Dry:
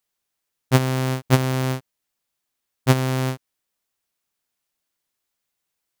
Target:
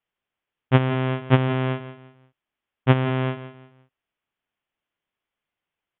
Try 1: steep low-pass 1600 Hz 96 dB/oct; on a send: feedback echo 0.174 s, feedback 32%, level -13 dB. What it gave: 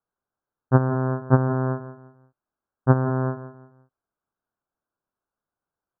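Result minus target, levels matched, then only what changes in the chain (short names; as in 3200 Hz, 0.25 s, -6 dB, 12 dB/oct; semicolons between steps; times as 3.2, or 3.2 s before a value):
2000 Hz band -5.5 dB
change: steep low-pass 3400 Hz 96 dB/oct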